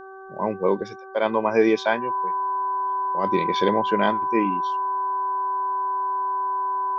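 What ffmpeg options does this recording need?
ffmpeg -i in.wav -af "bandreject=frequency=383.9:width_type=h:width=4,bandreject=frequency=767.8:width_type=h:width=4,bandreject=frequency=1151.7:width_type=h:width=4,bandreject=frequency=1535.6:width_type=h:width=4,bandreject=frequency=1000:width=30" out.wav

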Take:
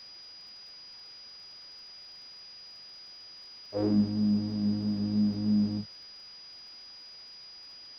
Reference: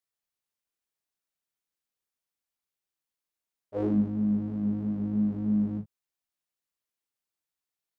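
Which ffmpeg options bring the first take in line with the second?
ffmpeg -i in.wav -af "adeclick=threshold=4,bandreject=frequency=4900:width=30,afftdn=noise_reduction=30:noise_floor=-49" out.wav

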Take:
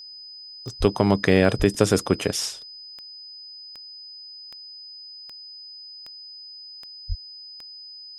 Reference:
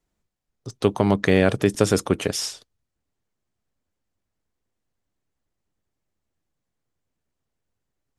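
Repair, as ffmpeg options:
ffmpeg -i in.wav -filter_complex "[0:a]adeclick=threshold=4,bandreject=frequency=5000:width=30,asplit=3[link_01][link_02][link_03];[link_01]afade=type=out:start_time=0.79:duration=0.02[link_04];[link_02]highpass=frequency=140:width=0.5412,highpass=frequency=140:width=1.3066,afade=type=in:start_time=0.79:duration=0.02,afade=type=out:start_time=0.91:duration=0.02[link_05];[link_03]afade=type=in:start_time=0.91:duration=0.02[link_06];[link_04][link_05][link_06]amix=inputs=3:normalize=0,asplit=3[link_07][link_08][link_09];[link_07]afade=type=out:start_time=1.58:duration=0.02[link_10];[link_08]highpass=frequency=140:width=0.5412,highpass=frequency=140:width=1.3066,afade=type=in:start_time=1.58:duration=0.02,afade=type=out:start_time=1.7:duration=0.02[link_11];[link_09]afade=type=in:start_time=1.7:duration=0.02[link_12];[link_10][link_11][link_12]amix=inputs=3:normalize=0,asplit=3[link_13][link_14][link_15];[link_13]afade=type=out:start_time=7.08:duration=0.02[link_16];[link_14]highpass=frequency=140:width=0.5412,highpass=frequency=140:width=1.3066,afade=type=in:start_time=7.08:duration=0.02,afade=type=out:start_time=7.2:duration=0.02[link_17];[link_15]afade=type=in:start_time=7.2:duration=0.02[link_18];[link_16][link_17][link_18]amix=inputs=3:normalize=0,asetnsamples=nb_out_samples=441:pad=0,asendcmd='2.97 volume volume 10dB',volume=0dB" out.wav

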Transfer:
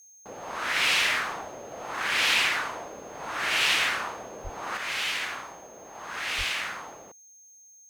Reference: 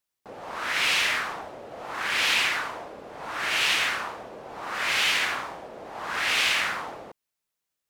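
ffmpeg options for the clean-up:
ffmpeg -i in.wav -filter_complex "[0:a]bandreject=frequency=6400:width=30,asplit=3[link_01][link_02][link_03];[link_01]afade=type=out:start_time=4.43:duration=0.02[link_04];[link_02]highpass=frequency=140:width=0.5412,highpass=frequency=140:width=1.3066,afade=type=in:start_time=4.43:duration=0.02,afade=type=out:start_time=4.55:duration=0.02[link_05];[link_03]afade=type=in:start_time=4.55:duration=0.02[link_06];[link_04][link_05][link_06]amix=inputs=3:normalize=0,asplit=3[link_07][link_08][link_09];[link_07]afade=type=out:start_time=6.37:duration=0.02[link_10];[link_08]highpass=frequency=140:width=0.5412,highpass=frequency=140:width=1.3066,afade=type=in:start_time=6.37:duration=0.02,afade=type=out:start_time=6.49:duration=0.02[link_11];[link_09]afade=type=in:start_time=6.49:duration=0.02[link_12];[link_10][link_11][link_12]amix=inputs=3:normalize=0,agate=range=-21dB:threshold=-46dB,asetnsamples=nb_out_samples=441:pad=0,asendcmd='4.77 volume volume 6dB',volume=0dB" out.wav

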